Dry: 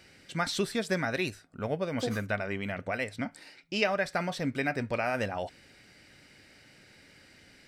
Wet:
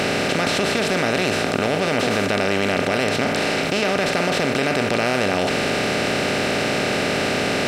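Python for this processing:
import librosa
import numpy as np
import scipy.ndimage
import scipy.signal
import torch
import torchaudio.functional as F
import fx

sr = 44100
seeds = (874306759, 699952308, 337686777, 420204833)

y = fx.bin_compress(x, sr, power=0.2)
y = fx.peak_eq(y, sr, hz=1600.0, db=-3.0, octaves=0.67)
y = fx.env_flatten(y, sr, amount_pct=70)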